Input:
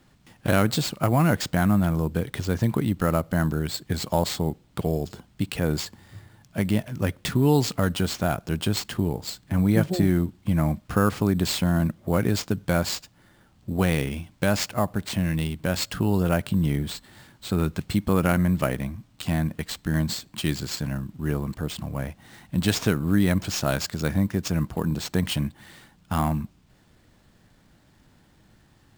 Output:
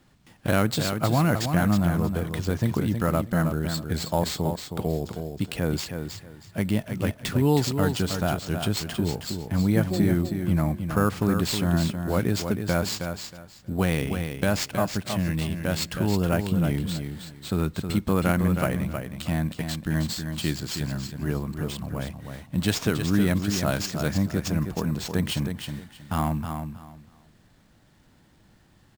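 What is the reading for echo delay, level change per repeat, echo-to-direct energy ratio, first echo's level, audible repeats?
317 ms, -13.0 dB, -7.0 dB, -7.0 dB, 3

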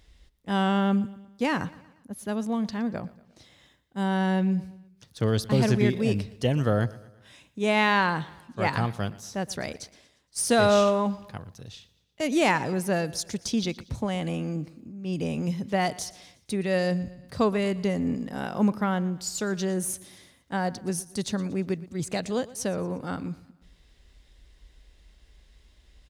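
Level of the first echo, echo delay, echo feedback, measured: -20.0 dB, 117 ms, 49%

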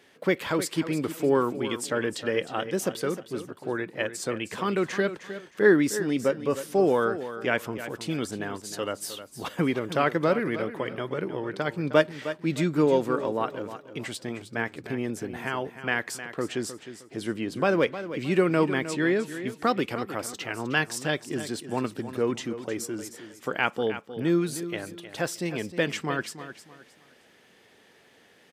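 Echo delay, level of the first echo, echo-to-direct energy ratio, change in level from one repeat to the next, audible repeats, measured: 310 ms, -12.0 dB, -11.5 dB, -11.0 dB, 3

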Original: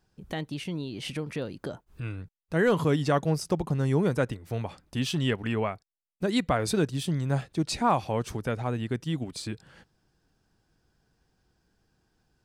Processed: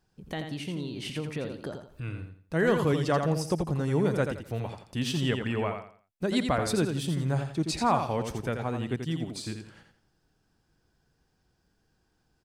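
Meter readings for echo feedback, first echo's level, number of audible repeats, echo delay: 30%, -6.5 dB, 3, 85 ms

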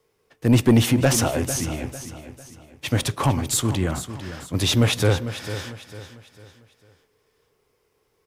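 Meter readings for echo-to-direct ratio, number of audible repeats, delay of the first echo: -11.5 dB, 3, 449 ms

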